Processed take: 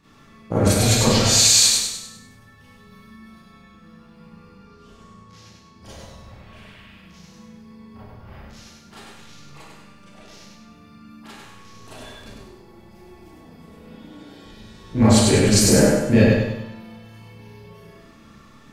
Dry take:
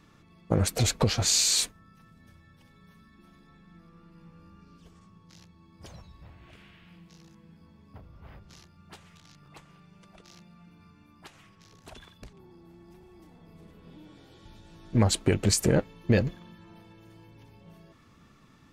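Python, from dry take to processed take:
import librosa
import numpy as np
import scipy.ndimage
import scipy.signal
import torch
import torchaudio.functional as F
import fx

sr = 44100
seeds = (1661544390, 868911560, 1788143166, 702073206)

y = fx.high_shelf(x, sr, hz=9100.0, db=-6.0, at=(4.45, 5.85))
y = fx.echo_feedback(y, sr, ms=99, feedback_pct=45, wet_db=-3)
y = fx.rev_schroeder(y, sr, rt60_s=0.54, comb_ms=28, drr_db=-9.5)
y = y * 10.0 ** (-2.0 / 20.0)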